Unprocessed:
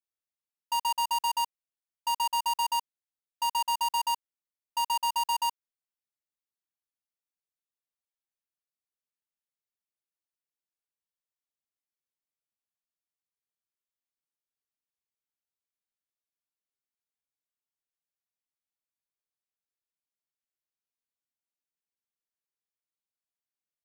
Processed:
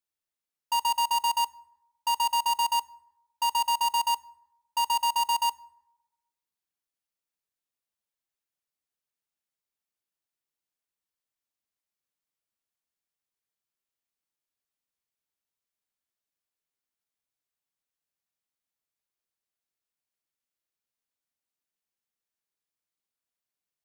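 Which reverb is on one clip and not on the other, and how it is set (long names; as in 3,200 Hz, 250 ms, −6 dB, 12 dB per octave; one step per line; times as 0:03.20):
dense smooth reverb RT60 1 s, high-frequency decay 0.5×, DRR 19.5 dB
level +2.5 dB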